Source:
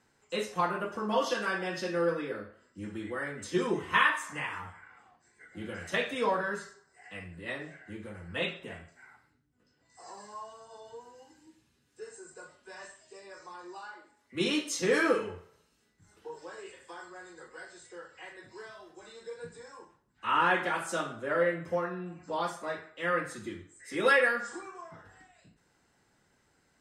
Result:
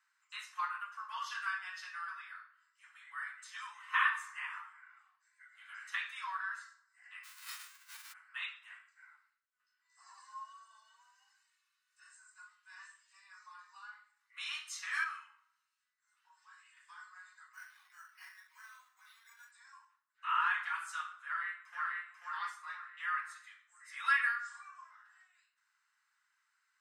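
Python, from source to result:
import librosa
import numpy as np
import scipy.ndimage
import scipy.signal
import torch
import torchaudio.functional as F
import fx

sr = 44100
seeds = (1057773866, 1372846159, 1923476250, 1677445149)

y = fx.envelope_flatten(x, sr, power=0.1, at=(7.23, 8.12), fade=0.02)
y = fx.comb(y, sr, ms=2.7, depth=0.65, at=(10.15, 12.15))
y = fx.comb_fb(y, sr, f0_hz=160.0, decay_s=0.19, harmonics='all', damping=0.0, mix_pct=60, at=(15.04, 16.77))
y = fx.resample_bad(y, sr, factor=6, down='none', up='hold', at=(17.53, 19.51))
y = fx.echo_throw(y, sr, start_s=21.23, length_s=0.76, ms=490, feedback_pct=40, wet_db=-1.0)
y = scipy.signal.sosfilt(scipy.signal.butter(8, 1100.0, 'highpass', fs=sr, output='sos'), y)
y = fx.high_shelf(y, sr, hz=2000.0, db=-10.5)
y = fx.notch(y, sr, hz=3300.0, q=24.0)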